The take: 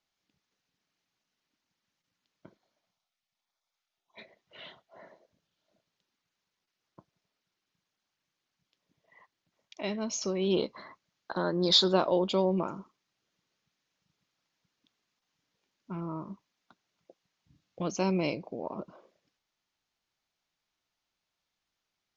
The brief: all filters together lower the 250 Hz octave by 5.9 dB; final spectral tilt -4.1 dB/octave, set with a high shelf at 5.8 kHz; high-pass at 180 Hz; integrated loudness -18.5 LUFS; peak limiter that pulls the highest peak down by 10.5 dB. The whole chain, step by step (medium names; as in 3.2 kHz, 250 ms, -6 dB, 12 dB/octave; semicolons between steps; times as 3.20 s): high-pass 180 Hz; peaking EQ 250 Hz -8 dB; treble shelf 5.8 kHz -6.5 dB; trim +17.5 dB; peak limiter -5 dBFS